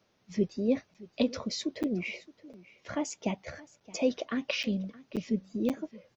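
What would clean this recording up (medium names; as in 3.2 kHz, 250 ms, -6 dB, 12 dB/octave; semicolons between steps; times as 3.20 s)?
interpolate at 0.94/1.83/2.53/3.80/4.63/5.16/5.69 s, 7.6 ms; inverse comb 620 ms -20.5 dB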